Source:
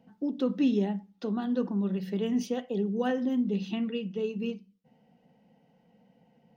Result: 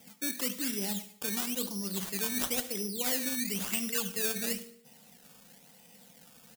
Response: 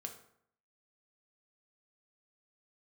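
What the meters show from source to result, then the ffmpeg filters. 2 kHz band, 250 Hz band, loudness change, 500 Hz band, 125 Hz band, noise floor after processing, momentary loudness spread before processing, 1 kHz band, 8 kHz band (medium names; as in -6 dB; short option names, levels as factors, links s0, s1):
+6.0 dB, -9.5 dB, -1.0 dB, -8.0 dB, -8.0 dB, -58 dBFS, 8 LU, -4.0 dB, no reading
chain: -filter_complex "[0:a]highshelf=f=2800:g=11.5,areverse,acompressor=threshold=0.0158:ratio=6,areverse,acrusher=samples=15:mix=1:aa=0.000001:lfo=1:lforange=15:lforate=0.98,crystalizer=i=7.5:c=0,aecho=1:1:73|146|219|292:0.141|0.0622|0.0273|0.012,asplit=2[s0][s1];[1:a]atrim=start_sample=2205,adelay=100[s2];[s1][s2]afir=irnorm=-1:irlink=0,volume=0.178[s3];[s0][s3]amix=inputs=2:normalize=0"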